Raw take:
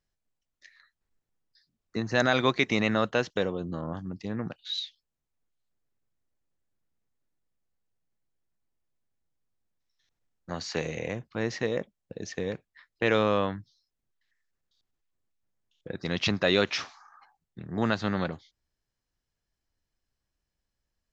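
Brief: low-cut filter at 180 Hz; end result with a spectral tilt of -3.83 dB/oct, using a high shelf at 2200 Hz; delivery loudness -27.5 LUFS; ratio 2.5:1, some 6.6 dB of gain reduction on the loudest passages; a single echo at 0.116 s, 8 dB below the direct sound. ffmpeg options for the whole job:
-af "highpass=180,highshelf=f=2.2k:g=3.5,acompressor=threshold=-28dB:ratio=2.5,aecho=1:1:116:0.398,volume=5.5dB"

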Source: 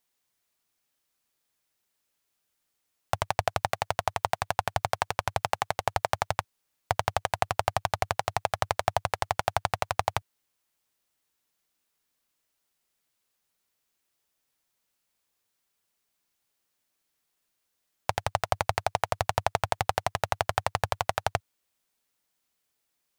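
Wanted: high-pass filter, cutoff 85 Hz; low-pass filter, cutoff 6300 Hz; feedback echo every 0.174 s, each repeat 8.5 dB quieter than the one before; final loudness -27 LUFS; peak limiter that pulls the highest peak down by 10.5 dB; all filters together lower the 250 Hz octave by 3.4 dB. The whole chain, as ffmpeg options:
-af "highpass=85,lowpass=6.3k,equalizer=f=250:t=o:g=-6.5,alimiter=limit=-16dB:level=0:latency=1,aecho=1:1:174|348|522|696:0.376|0.143|0.0543|0.0206,volume=11.5dB"

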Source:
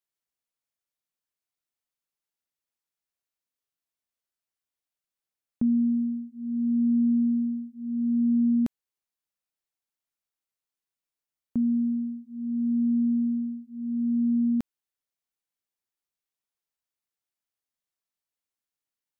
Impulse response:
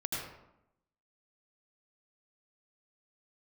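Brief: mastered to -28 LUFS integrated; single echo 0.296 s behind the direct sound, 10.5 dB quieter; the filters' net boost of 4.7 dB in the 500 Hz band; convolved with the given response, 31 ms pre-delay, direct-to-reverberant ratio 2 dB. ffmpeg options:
-filter_complex "[0:a]equalizer=f=500:t=o:g=7,aecho=1:1:296:0.299,asplit=2[a][b];[1:a]atrim=start_sample=2205,adelay=31[c];[b][c]afir=irnorm=-1:irlink=0,volume=-6dB[d];[a][d]amix=inputs=2:normalize=0,volume=-3.5dB"

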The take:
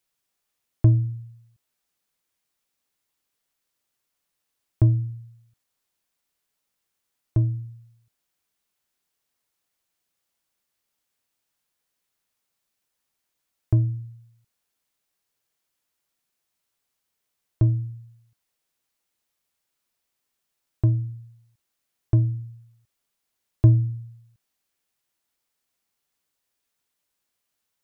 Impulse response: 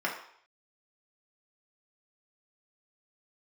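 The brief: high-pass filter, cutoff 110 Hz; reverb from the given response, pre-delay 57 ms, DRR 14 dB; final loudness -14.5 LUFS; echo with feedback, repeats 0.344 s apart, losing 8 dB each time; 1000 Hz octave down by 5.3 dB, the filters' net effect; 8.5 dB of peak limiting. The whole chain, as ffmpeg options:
-filter_complex "[0:a]highpass=110,equalizer=f=1k:t=o:g=-7.5,alimiter=limit=-17.5dB:level=0:latency=1,aecho=1:1:344|688|1032|1376|1720:0.398|0.159|0.0637|0.0255|0.0102,asplit=2[a][b];[1:a]atrim=start_sample=2205,adelay=57[c];[b][c]afir=irnorm=-1:irlink=0,volume=-23dB[d];[a][d]amix=inputs=2:normalize=0,volume=17dB"

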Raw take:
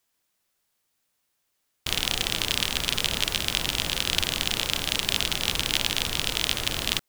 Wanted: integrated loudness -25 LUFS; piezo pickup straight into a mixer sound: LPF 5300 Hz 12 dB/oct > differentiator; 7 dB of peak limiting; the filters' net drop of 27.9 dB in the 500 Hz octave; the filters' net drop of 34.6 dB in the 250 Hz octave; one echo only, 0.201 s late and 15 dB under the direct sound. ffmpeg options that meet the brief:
-af "equalizer=f=250:t=o:g=-6,equalizer=f=500:t=o:g=-5.5,alimiter=limit=-9dB:level=0:latency=1,lowpass=5.3k,aderivative,aecho=1:1:201:0.178,volume=11dB"

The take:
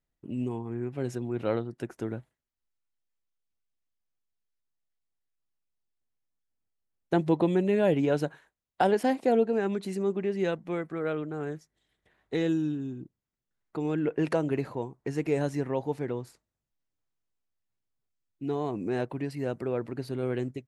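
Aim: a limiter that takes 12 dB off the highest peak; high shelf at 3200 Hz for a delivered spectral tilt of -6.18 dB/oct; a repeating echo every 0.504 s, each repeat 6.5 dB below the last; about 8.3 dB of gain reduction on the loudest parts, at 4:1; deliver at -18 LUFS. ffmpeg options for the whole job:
-af "highshelf=f=3.2k:g=9,acompressor=threshold=-29dB:ratio=4,alimiter=level_in=5dB:limit=-24dB:level=0:latency=1,volume=-5dB,aecho=1:1:504|1008|1512|2016|2520|3024:0.473|0.222|0.105|0.0491|0.0231|0.0109,volume=20.5dB"

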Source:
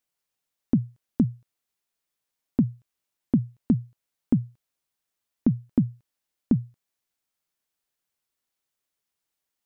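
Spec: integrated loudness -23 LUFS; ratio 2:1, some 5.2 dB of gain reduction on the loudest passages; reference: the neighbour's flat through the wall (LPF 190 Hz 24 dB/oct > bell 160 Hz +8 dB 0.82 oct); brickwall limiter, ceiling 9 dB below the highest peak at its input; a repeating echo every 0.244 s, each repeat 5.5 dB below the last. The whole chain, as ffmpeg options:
-af "acompressor=threshold=-25dB:ratio=2,alimiter=limit=-21dB:level=0:latency=1,lowpass=f=190:w=0.5412,lowpass=f=190:w=1.3066,equalizer=f=160:t=o:w=0.82:g=8,aecho=1:1:244|488|732|976|1220|1464|1708:0.531|0.281|0.149|0.079|0.0419|0.0222|0.0118,volume=11dB"

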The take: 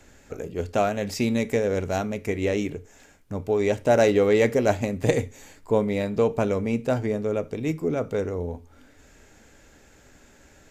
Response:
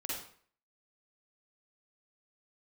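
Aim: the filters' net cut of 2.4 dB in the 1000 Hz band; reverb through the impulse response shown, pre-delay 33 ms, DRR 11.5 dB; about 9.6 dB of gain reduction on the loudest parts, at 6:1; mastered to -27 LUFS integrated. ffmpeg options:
-filter_complex "[0:a]equalizer=f=1k:t=o:g=-4,acompressor=threshold=-26dB:ratio=6,asplit=2[a][b];[1:a]atrim=start_sample=2205,adelay=33[c];[b][c]afir=irnorm=-1:irlink=0,volume=-13dB[d];[a][d]amix=inputs=2:normalize=0,volume=4dB"

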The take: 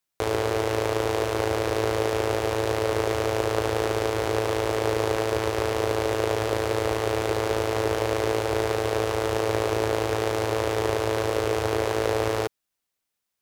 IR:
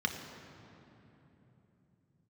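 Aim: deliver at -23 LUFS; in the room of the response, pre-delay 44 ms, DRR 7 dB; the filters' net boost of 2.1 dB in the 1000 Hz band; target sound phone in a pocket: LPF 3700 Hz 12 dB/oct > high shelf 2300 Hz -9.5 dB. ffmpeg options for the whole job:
-filter_complex "[0:a]equalizer=f=1k:t=o:g=4.5,asplit=2[a][b];[1:a]atrim=start_sample=2205,adelay=44[c];[b][c]afir=irnorm=-1:irlink=0,volume=-13.5dB[d];[a][d]amix=inputs=2:normalize=0,lowpass=3.7k,highshelf=f=2.3k:g=-9.5,volume=1.5dB"

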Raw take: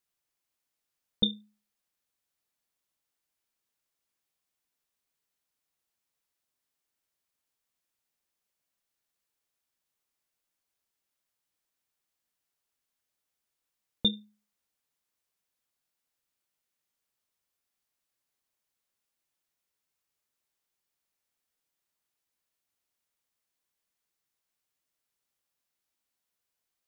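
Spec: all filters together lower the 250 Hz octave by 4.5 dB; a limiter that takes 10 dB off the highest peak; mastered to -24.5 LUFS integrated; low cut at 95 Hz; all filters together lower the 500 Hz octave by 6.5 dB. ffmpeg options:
-af "highpass=95,equalizer=f=250:t=o:g=-4.5,equalizer=f=500:t=o:g=-6,volume=13.5dB,alimiter=limit=-9.5dB:level=0:latency=1"

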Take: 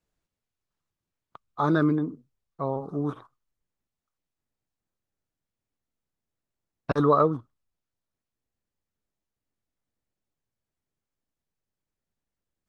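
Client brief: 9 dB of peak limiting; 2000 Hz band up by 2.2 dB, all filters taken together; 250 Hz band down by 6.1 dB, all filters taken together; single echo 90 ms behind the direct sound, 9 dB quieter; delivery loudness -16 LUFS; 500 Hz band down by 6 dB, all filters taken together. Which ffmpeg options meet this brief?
-af "equalizer=f=250:t=o:g=-6.5,equalizer=f=500:t=o:g=-5.5,equalizer=f=2k:t=o:g=4,alimiter=limit=-20.5dB:level=0:latency=1,aecho=1:1:90:0.355,volume=16.5dB"

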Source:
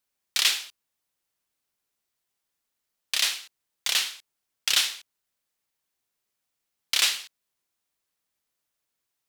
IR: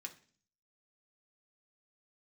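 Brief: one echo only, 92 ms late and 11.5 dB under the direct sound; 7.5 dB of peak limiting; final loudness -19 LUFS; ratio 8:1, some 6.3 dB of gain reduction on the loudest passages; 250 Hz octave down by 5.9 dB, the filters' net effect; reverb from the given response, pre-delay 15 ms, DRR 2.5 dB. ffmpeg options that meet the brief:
-filter_complex "[0:a]equalizer=f=250:t=o:g=-8.5,acompressor=threshold=-24dB:ratio=8,alimiter=limit=-16.5dB:level=0:latency=1,aecho=1:1:92:0.266,asplit=2[a][b];[1:a]atrim=start_sample=2205,adelay=15[c];[b][c]afir=irnorm=-1:irlink=0,volume=1dB[d];[a][d]amix=inputs=2:normalize=0,volume=11.5dB"

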